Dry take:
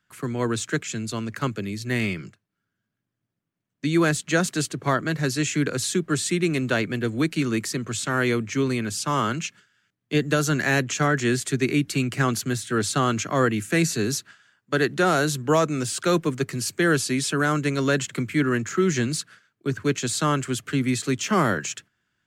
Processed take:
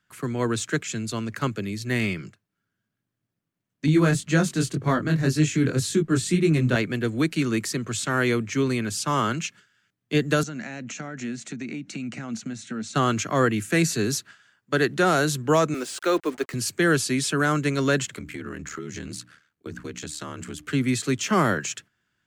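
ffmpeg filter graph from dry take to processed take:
-filter_complex "[0:a]asettb=1/sr,asplit=3[a][b][c];[a]atrim=end=3.864[d];[b]atrim=start=3.86:end=6.76,asetpts=PTS-STARTPTS,afade=t=in:d=0.004:c=qsin,afade=t=out:st=2.896:d=0.004:c=qsin,lowshelf=f=270:g=11,acompressor=mode=upward:threshold=-32dB:ratio=2.5:attack=3.2:release=140:knee=2.83:detection=peak,flanger=delay=19:depth=5.2:speed=1.9[e];[c]atrim=start=6.756[f];[d][e]acrossfade=d=0.004:c1=hsin:c2=qsin[g];[g][f]acrossfade=d=0.004:c1=qsin:c2=hsin,asettb=1/sr,asplit=3[h][i][j];[h]atrim=end=10.434[k];[i]atrim=start=10.43:end=12.95,asetpts=PTS-STARTPTS,afade=t=in:d=0.004:c=qsin,afade=t=out:st=2.516:d=0.004:c=qsin,acompressor=threshold=-27dB:ratio=16:attack=3.2:release=140:knee=1:detection=peak,highpass=170,equalizer=f=220:t=q:w=4:g=10,equalizer=f=390:t=q:w=4:g=-10,equalizer=f=1.1k:t=q:w=4:g=-7,equalizer=f=1.7k:t=q:w=4:g=-5,equalizer=f=3.3k:t=q:w=4:g=-8,equalizer=f=4.8k:t=q:w=4:g=-8,lowpass=f=6.6k:w=0.5412,lowpass=f=6.6k:w=1.3066[l];[j]atrim=start=12.946[m];[k][l]acrossfade=d=0.004:c1=hsin:c2=qsin[n];[n][m]acrossfade=d=0.004:c1=qsin:c2=hsin,asettb=1/sr,asplit=3[o][p][q];[o]atrim=end=15.744[r];[p]atrim=start=15.74:end=16.54,asetpts=PTS-STARTPTS,afade=t=in:d=0.004:c=qsin,afade=t=out:st=0.796:d=0.004:c=qsin,highpass=f=280:w=0.5412,highpass=f=280:w=1.3066,highshelf=f=4.9k:g=-9,acrusher=bits=6:mix=0:aa=0.5[s];[q]atrim=start=16.536[t];[r][s]acrossfade=d=0.004:c1=hsin:c2=qsin[u];[u][t]acrossfade=d=0.004:c1=qsin:c2=hsin,asettb=1/sr,asplit=3[v][w][x];[v]atrim=end=18.144[y];[w]atrim=start=18.14:end=20.67,asetpts=PTS-STARTPTS,afade=t=in:d=0.004:c=qsin,afade=t=out:st=2.526:d=0.004:c=qsin,aeval=exprs='val(0)*sin(2*PI*38*n/s)':c=same,bandreject=f=60:t=h:w=6,bandreject=f=120:t=h:w=6,bandreject=f=180:t=h:w=6,bandreject=f=240:t=h:w=6,bandreject=f=300:t=h:w=6,acompressor=threshold=-31dB:ratio=6:attack=3.2:release=140:knee=1:detection=peak[z];[x]atrim=start=20.666[aa];[y][z]acrossfade=d=0.004:c1=hsin:c2=qsin[ab];[ab][aa]acrossfade=d=0.004:c1=qsin:c2=hsin"

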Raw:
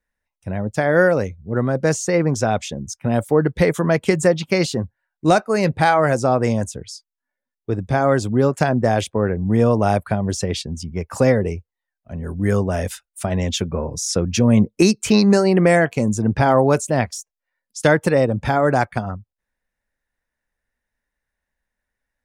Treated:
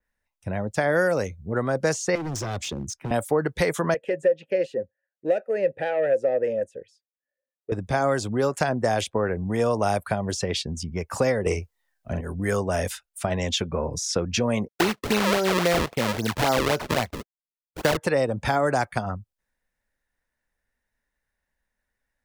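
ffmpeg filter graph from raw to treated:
-filter_complex "[0:a]asettb=1/sr,asplit=3[a][b][c];[a]atrim=end=2.154[d];[b]atrim=start=2.15:end=3.11,asetpts=PTS-STARTPTS,afade=t=in:d=0.004:c=qsin,afade=t=out:st=0.956:d=0.004:c=qsin,equalizer=f=340:t=o:w=0.7:g=11,acrossover=split=130|3000[e][f][g];[f]acompressor=threshold=-32dB:ratio=2:attack=3.2:release=140:knee=2.83:detection=peak[h];[e][h][g]amix=inputs=3:normalize=0,asoftclip=type=hard:threshold=-25dB[i];[c]atrim=start=3.106[j];[d][i]acrossfade=d=0.004:c1=hsin:c2=qsin[k];[k][j]acrossfade=d=0.004:c1=qsin:c2=hsin,asettb=1/sr,asplit=3[l][m][n];[l]atrim=end=3.944[o];[m]atrim=start=3.94:end=7.72,asetpts=PTS-STARTPTS,afade=t=in:d=0.004:c=qsin,afade=t=out:st=3.776:d=0.004:c=qsin,equalizer=f=5k:t=o:w=2:g=-12,acontrast=76,asplit=3[p][q][r];[p]bandpass=f=530:t=q:w=8,volume=0dB[s];[q]bandpass=f=1.84k:t=q:w=8,volume=-6dB[t];[r]bandpass=f=2.48k:t=q:w=8,volume=-9dB[u];[s][t][u]amix=inputs=3:normalize=0[v];[n]atrim=start=7.716[w];[o][v]acrossfade=d=0.004:c1=hsin:c2=qsin[x];[x][w]acrossfade=d=0.004:c1=qsin:c2=hsin,asettb=1/sr,asplit=3[y][z][aa];[y]atrim=end=11.464[ab];[z]atrim=start=11.46:end=12.21,asetpts=PTS-STARTPTS,afade=t=in:d=0.004:c=qsin,afade=t=out:st=0.746:d=0.004:c=qsin,acontrast=81,asplit=2[ac][ad];[ad]adelay=45,volume=-4.5dB[ae];[ac][ae]amix=inputs=2:normalize=0,atrim=end_sample=33075[af];[aa]atrim=start=12.206[ag];[ab][af]acrossfade=d=0.004:c1=hsin:c2=qsin[ah];[ah][ag]acrossfade=d=0.004:c1=qsin:c2=hsin,asettb=1/sr,asplit=3[ai][aj][ak];[ai]atrim=end=14.684[al];[aj]atrim=start=14.68:end=17.97,asetpts=PTS-STARTPTS,afade=t=in:d=0.004:c=qsin,afade=t=out:st=3.286:d=0.004:c=qsin,agate=range=-33dB:threshold=-33dB:ratio=3:release=100:detection=peak,acrusher=samples=34:mix=1:aa=0.000001:lfo=1:lforange=54.4:lforate=3.7[am];[ak]atrim=start=17.966[an];[al][am]acrossfade=d=0.004:c1=hsin:c2=qsin[ao];[ao][an]acrossfade=d=0.004:c1=qsin:c2=hsin,acrossover=split=450|4600[ap][aq][ar];[ap]acompressor=threshold=-28dB:ratio=4[as];[aq]acompressor=threshold=-21dB:ratio=4[at];[ar]acompressor=threshold=-42dB:ratio=4[au];[as][at][au]amix=inputs=3:normalize=0,adynamicequalizer=threshold=0.00891:dfrequency=4200:dqfactor=0.7:tfrequency=4200:tqfactor=0.7:attack=5:release=100:ratio=0.375:range=2.5:mode=boostabove:tftype=highshelf"

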